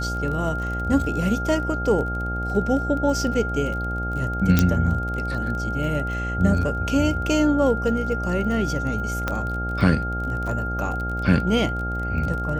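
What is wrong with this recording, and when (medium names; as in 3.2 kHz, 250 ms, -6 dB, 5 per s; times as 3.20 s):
buzz 60 Hz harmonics 14 -28 dBFS
crackle 23 per s -29 dBFS
whine 1.4 kHz -28 dBFS
4.59 s: pop -3 dBFS
9.28 s: pop -10 dBFS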